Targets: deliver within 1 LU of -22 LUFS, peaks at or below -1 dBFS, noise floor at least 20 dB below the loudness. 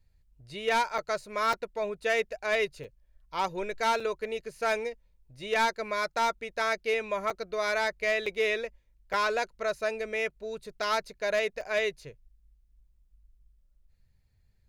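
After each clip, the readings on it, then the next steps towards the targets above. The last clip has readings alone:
clipped samples 0.4%; clipping level -19.5 dBFS; dropouts 8; longest dropout 4.1 ms; loudness -30.0 LUFS; peak level -19.5 dBFS; loudness target -22.0 LUFS
-> clip repair -19.5 dBFS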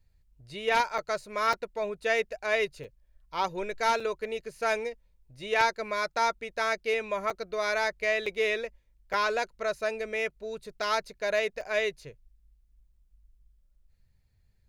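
clipped samples 0.0%; dropouts 8; longest dropout 4.1 ms
-> interpolate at 0.98/1.53/2.84/4.00/7.30/8.26/9.13/11.61 s, 4.1 ms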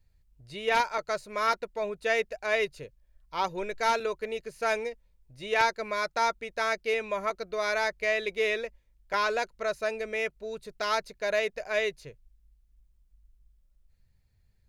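dropouts 0; loudness -29.5 LUFS; peak level -10.5 dBFS; loudness target -22.0 LUFS
-> trim +7.5 dB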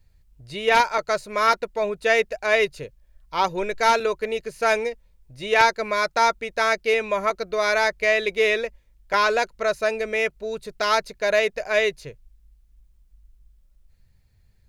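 loudness -22.0 LUFS; peak level -3.0 dBFS; noise floor -59 dBFS

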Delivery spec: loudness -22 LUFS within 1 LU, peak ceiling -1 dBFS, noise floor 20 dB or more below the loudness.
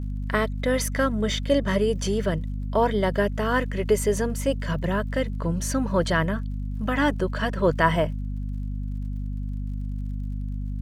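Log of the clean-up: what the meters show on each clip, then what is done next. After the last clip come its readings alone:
tick rate 45 per s; hum 50 Hz; highest harmonic 250 Hz; hum level -27 dBFS; loudness -25.5 LUFS; peak level -5.5 dBFS; loudness target -22.0 LUFS
-> de-click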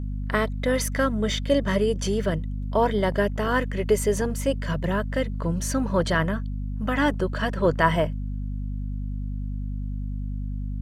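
tick rate 1.1 per s; hum 50 Hz; highest harmonic 250 Hz; hum level -27 dBFS
-> de-hum 50 Hz, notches 5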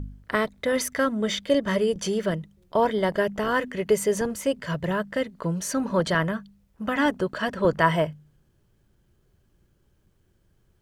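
hum not found; loudness -25.5 LUFS; peak level -5.5 dBFS; loudness target -22.0 LUFS
-> trim +3.5 dB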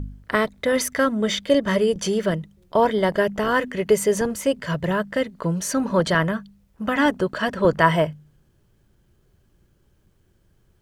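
loudness -22.0 LUFS; peak level -2.0 dBFS; noise floor -62 dBFS

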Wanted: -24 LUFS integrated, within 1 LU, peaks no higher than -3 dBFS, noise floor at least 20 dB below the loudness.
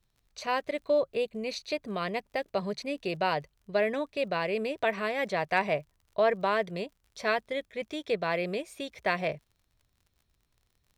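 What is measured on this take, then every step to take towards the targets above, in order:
tick rate 40 per s; loudness -31.0 LUFS; peak level -11.5 dBFS; loudness target -24.0 LUFS
-> de-click; trim +7 dB

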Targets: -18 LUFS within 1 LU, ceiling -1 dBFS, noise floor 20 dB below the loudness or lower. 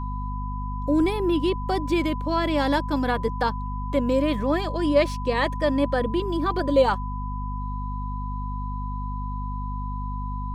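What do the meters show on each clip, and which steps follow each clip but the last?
hum 50 Hz; highest harmonic 250 Hz; hum level -28 dBFS; steady tone 1 kHz; tone level -34 dBFS; loudness -25.5 LUFS; peak level -7.5 dBFS; loudness target -18.0 LUFS
-> hum notches 50/100/150/200/250 Hz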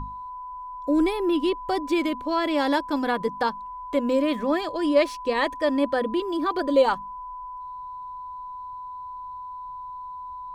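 hum not found; steady tone 1 kHz; tone level -34 dBFS
-> band-stop 1 kHz, Q 30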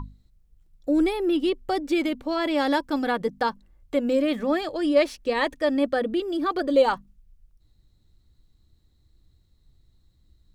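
steady tone not found; loudness -24.5 LUFS; peak level -8.5 dBFS; loudness target -18.0 LUFS
-> trim +6.5 dB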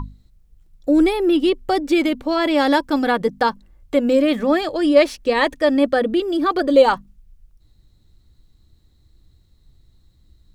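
loudness -18.0 LUFS; peak level -2.0 dBFS; noise floor -57 dBFS

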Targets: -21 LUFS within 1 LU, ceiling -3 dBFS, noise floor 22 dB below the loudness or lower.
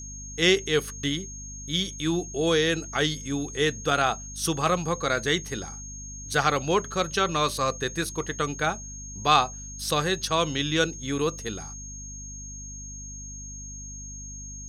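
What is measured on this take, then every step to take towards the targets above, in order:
hum 50 Hz; highest harmonic 250 Hz; hum level -40 dBFS; steady tone 6.5 kHz; tone level -39 dBFS; loudness -26.0 LUFS; peak level -6.5 dBFS; loudness target -21.0 LUFS
-> hum notches 50/100/150/200/250 Hz; band-stop 6.5 kHz, Q 30; trim +5 dB; peak limiter -3 dBFS

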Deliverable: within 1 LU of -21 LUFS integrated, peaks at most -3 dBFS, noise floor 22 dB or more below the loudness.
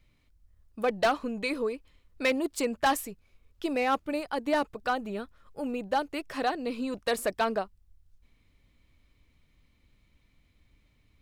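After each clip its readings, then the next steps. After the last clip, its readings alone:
clipped samples 0.5%; clipping level -19.0 dBFS; loudness -30.5 LUFS; peak level -19.0 dBFS; loudness target -21.0 LUFS
-> clip repair -19 dBFS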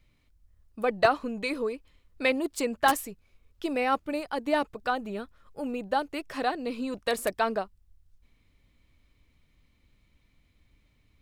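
clipped samples 0.0%; loudness -29.5 LUFS; peak level -10.0 dBFS; loudness target -21.0 LUFS
-> trim +8.5 dB; peak limiter -3 dBFS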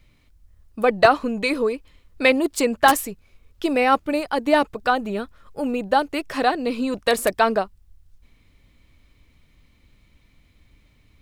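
loudness -21.0 LUFS; peak level -3.0 dBFS; noise floor -59 dBFS

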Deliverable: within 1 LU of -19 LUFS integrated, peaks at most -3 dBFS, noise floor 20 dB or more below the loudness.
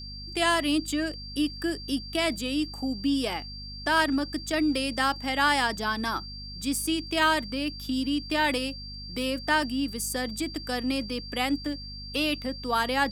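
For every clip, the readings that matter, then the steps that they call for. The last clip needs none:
hum 50 Hz; highest harmonic 250 Hz; hum level -40 dBFS; steady tone 4.7 kHz; tone level -40 dBFS; loudness -27.5 LUFS; peak level -10.0 dBFS; loudness target -19.0 LUFS
-> hum notches 50/100/150/200/250 Hz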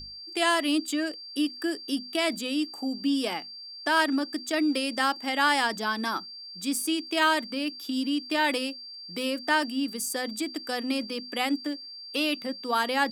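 hum not found; steady tone 4.7 kHz; tone level -40 dBFS
-> band-stop 4.7 kHz, Q 30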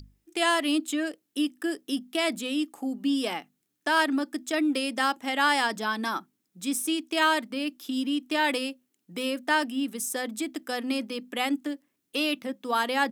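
steady tone not found; loudness -28.0 LUFS; peak level -10.5 dBFS; loudness target -19.0 LUFS
-> trim +9 dB; peak limiter -3 dBFS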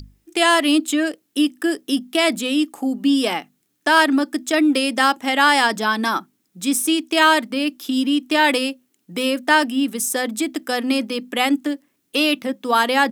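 loudness -19.0 LUFS; peak level -3.0 dBFS; noise floor -69 dBFS

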